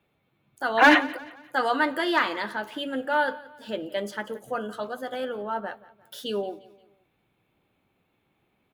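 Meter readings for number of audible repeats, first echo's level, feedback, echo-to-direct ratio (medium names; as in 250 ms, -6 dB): 2, -20.0 dB, 41%, -19.0 dB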